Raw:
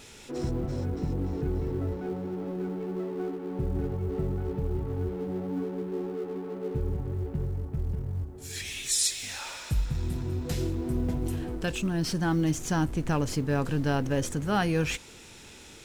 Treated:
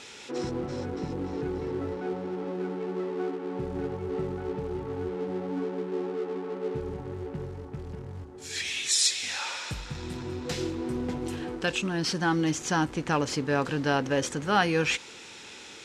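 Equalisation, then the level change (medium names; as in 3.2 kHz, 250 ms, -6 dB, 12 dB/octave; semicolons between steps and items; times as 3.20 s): high-pass 480 Hz 6 dB/octave; low-pass 6.3 kHz 12 dB/octave; band-stop 650 Hz, Q 12; +6.0 dB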